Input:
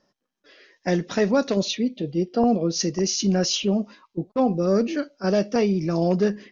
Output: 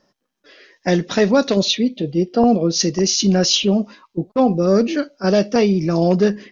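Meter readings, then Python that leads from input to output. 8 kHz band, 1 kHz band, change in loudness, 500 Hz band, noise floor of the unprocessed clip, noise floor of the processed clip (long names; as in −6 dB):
can't be measured, +5.5 dB, +6.0 dB, +5.5 dB, −81 dBFS, −75 dBFS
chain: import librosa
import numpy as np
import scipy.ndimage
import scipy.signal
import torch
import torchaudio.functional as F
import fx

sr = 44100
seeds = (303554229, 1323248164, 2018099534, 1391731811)

y = fx.dynamic_eq(x, sr, hz=3700.0, q=2.1, threshold_db=-44.0, ratio=4.0, max_db=5)
y = y * 10.0 ** (5.5 / 20.0)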